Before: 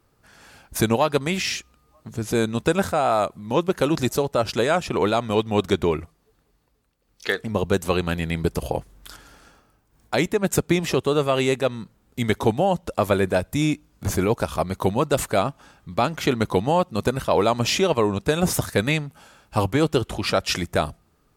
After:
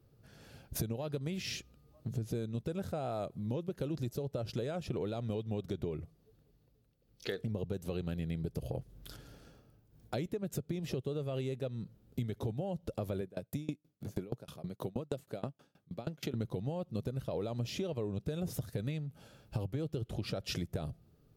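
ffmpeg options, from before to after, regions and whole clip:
-filter_complex "[0:a]asettb=1/sr,asplit=3[s0][s1][s2];[s0]atrim=end=13.214[s3];[s1]atrim=start=13.21:end=16.34,asetpts=PTS-STARTPTS,afade=t=in:d=0.004:c=qsin,afade=t=out:st=3.126:d=0.004:c=qsin,highpass=150,aeval=exprs='val(0)*pow(10,-29*if(lt(mod(6.3*n/s,1),2*abs(6.3)/1000),1-mod(6.3*n/s,1)/(2*abs(6.3)/1000),(mod(6.3*n/s,1)-2*abs(6.3)/1000)/(1-2*abs(6.3)/1000))/20)':c=same[s4];[s2]atrim=start=16.336[s5];[s3][s4]acrossfade=d=0.004:c1=hsin:c2=qsin[s6];[s6][s5]acrossfade=d=0.004:c1=qsin:c2=hsin,alimiter=limit=0.266:level=0:latency=1,equalizer=f=125:t=o:w=1:g=10,equalizer=f=500:t=o:w=1:g=4,equalizer=f=1000:t=o:w=1:g=-10,equalizer=f=2000:t=o:w=1:g=-6,equalizer=f=8000:t=o:w=1:g=-8,acompressor=threshold=0.0398:ratio=12,volume=0.562"

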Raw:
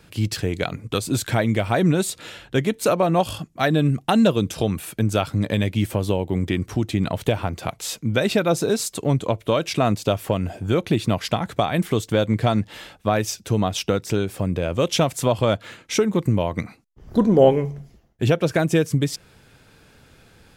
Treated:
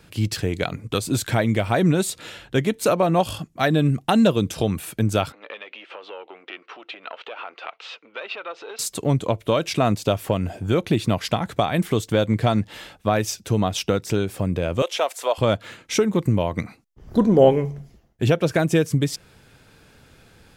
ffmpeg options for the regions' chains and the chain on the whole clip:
-filter_complex "[0:a]asettb=1/sr,asplit=3[s0][s1][s2];[s0]atrim=end=5.324[s3];[s1]atrim=start=5.32:end=8.79,asetpts=PTS-STARTPTS,afade=t=in:d=0.004:c=qsin,afade=t=out:st=3.466:d=0.004:c=qsin,aeval=exprs='(tanh(3.16*val(0)+0.4)-tanh(0.4))/3.16':c=same,acompressor=threshold=0.0501:ratio=6:attack=3.2:release=140:knee=1:detection=peak,highpass=f=470:w=0.5412,highpass=f=470:w=1.3066,equalizer=f=620:t=q:w=4:g=-4,equalizer=f=1300:t=q:w=4:g=7,equalizer=f=2700:t=q:w=4:g=7,lowpass=f=3700:w=0.5412,lowpass=f=3700:w=1.3066[s4];[s2]atrim=start=8.786[s5];[s3][s4]acrossfade=d=0.004:c1=hsin:c2=qsin[s6];[s6][s5]acrossfade=d=0.004:c1=qsin:c2=hsin,asettb=1/sr,asplit=3[s7][s8][s9];[s7]atrim=end=14.824[s10];[s8]atrim=start=14.82:end=15.38,asetpts=PTS-STARTPTS,afade=t=in:d=0.004:c=qsin,afade=t=out:st=0.556:d=0.004:c=qsin,highpass=f=480:w=0.5412,highpass=f=480:w=1.3066,acrossover=split=3200[s11][s12];[s12]acompressor=threshold=0.0282:ratio=4:attack=1:release=60[s13];[s11][s13]amix=inputs=2:normalize=0[s14];[s9]atrim=start=15.376[s15];[s10][s14]acrossfade=d=0.004:c1=hsin:c2=qsin[s16];[s16][s15]acrossfade=d=0.004:c1=qsin:c2=hsin"

